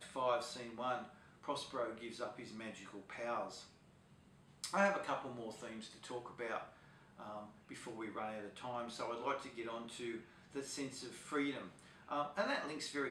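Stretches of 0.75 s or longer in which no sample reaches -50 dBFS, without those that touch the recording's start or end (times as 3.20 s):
3.65–4.64 s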